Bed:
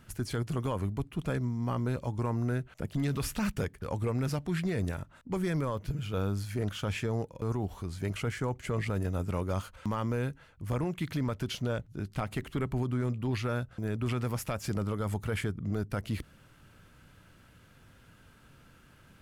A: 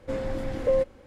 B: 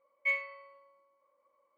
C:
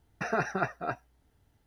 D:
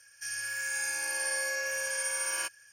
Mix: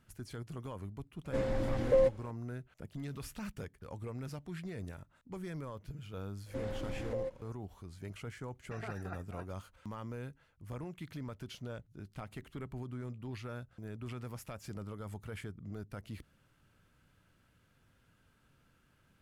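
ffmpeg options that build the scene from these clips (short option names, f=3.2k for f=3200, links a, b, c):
-filter_complex "[1:a]asplit=2[a][b];[0:a]volume=-11.5dB[c];[b]acompressor=threshold=-26dB:ratio=6:attack=3.2:release=140:knee=1:detection=peak[d];[a]atrim=end=1.06,asetpts=PTS-STARTPTS,volume=-3dB,afade=t=in:d=0.004:c=hsin,afade=t=out:st=1.056:d=0.004:c=hsin,adelay=1250[e];[d]atrim=end=1.06,asetpts=PTS-STARTPTS,volume=-8dB,afade=t=in:d=0.004:c=hsin,afade=t=out:st=1.056:d=0.004:c=hsin,adelay=6460[f];[3:a]atrim=end=1.66,asetpts=PTS-STARTPTS,volume=-16.5dB,afade=t=in:d=0.004:c=hsin,afade=t=out:st=1.656:d=0.004:c=hsin,adelay=374850S[g];[c][e][f][g]amix=inputs=4:normalize=0"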